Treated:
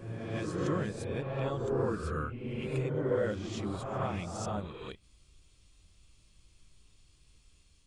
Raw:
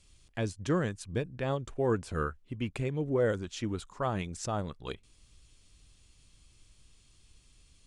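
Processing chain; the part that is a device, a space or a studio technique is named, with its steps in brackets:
reverse reverb (reversed playback; convolution reverb RT60 1.6 s, pre-delay 4 ms, DRR −3.5 dB; reversed playback)
level −6.5 dB

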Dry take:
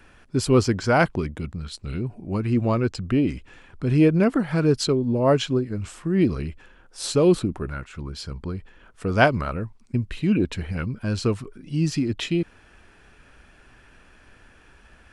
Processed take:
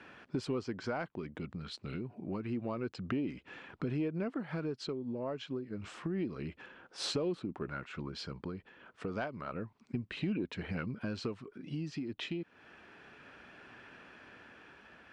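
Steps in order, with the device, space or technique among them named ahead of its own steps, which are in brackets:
AM radio (band-pass filter 170–3,900 Hz; downward compressor 5 to 1, threshold −34 dBFS, peak gain reduction 20.5 dB; soft clipping −20.5 dBFS, distortion −29 dB; amplitude tremolo 0.29 Hz, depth 35%)
level +1 dB

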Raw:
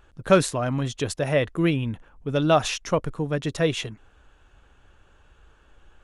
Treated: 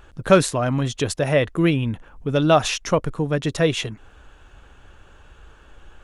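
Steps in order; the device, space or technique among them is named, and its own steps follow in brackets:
parallel compression (in parallel at −1 dB: downward compressor, threshold −38 dBFS, peak gain reduction 24.5 dB)
on the sum: level +2.5 dB

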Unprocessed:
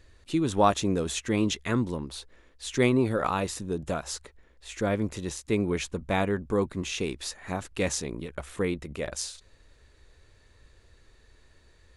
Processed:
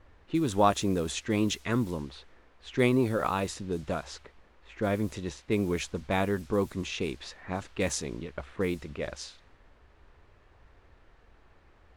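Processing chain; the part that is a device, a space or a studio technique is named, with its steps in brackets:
cassette deck with a dynamic noise filter (white noise bed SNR 23 dB; low-pass that shuts in the quiet parts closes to 1,300 Hz, open at −23.5 dBFS)
level −1.5 dB

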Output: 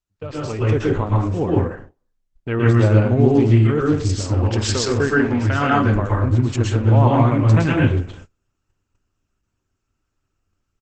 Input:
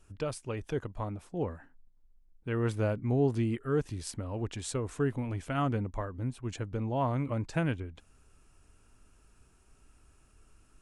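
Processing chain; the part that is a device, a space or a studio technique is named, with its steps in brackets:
0:04.33–0:05.85: thirty-one-band graphic EQ 125 Hz −11 dB, 315 Hz −5 dB, 1,600 Hz +8 dB, 5,000 Hz +11 dB, 10,000 Hz −6 dB
speakerphone in a meeting room (convolution reverb RT60 0.45 s, pre-delay 110 ms, DRR −4 dB; far-end echo of a speakerphone 360 ms, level −26 dB; automatic gain control gain up to 11 dB; noise gate −37 dBFS, range −27 dB; Opus 12 kbit/s 48,000 Hz)

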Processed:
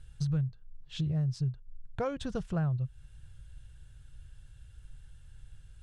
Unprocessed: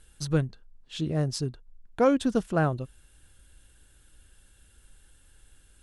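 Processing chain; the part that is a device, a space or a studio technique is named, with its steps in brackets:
jukebox (low-pass filter 6,800 Hz 12 dB per octave; low shelf with overshoot 180 Hz +10.5 dB, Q 3; downward compressor 4 to 1, threshold −26 dBFS, peak gain reduction 14.5 dB)
level −4 dB

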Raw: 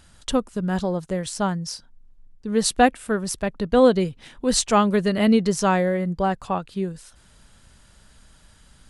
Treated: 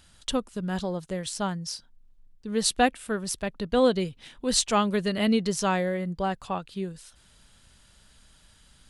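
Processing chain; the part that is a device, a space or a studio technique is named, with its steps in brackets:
presence and air boost (parametric band 3,400 Hz +5.5 dB 1.3 octaves; high-shelf EQ 9,200 Hz +6 dB)
level −6 dB

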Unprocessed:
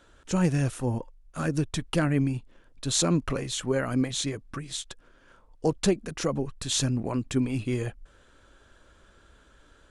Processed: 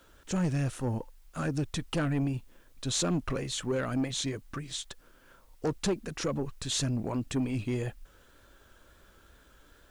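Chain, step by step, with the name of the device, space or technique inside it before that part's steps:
compact cassette (soft clipping −21.5 dBFS, distortion −13 dB; low-pass filter 9,200 Hz; tape wow and flutter; white noise bed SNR 37 dB)
level −1.5 dB

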